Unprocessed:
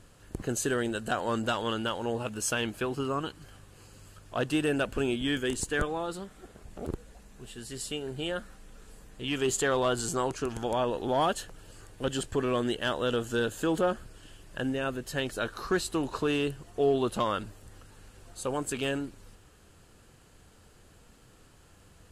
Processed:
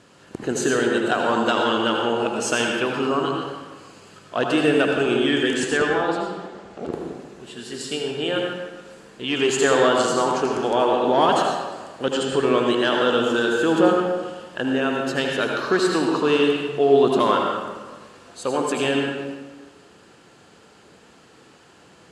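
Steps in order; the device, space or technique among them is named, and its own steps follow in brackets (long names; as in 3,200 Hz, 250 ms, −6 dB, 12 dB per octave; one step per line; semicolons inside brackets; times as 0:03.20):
supermarket ceiling speaker (band-pass filter 200–6,300 Hz; convolution reverb RT60 1.4 s, pre-delay 70 ms, DRR 0 dB)
0:05.77–0:06.93: low-pass filter 7,200 Hz 12 dB per octave
level +7.5 dB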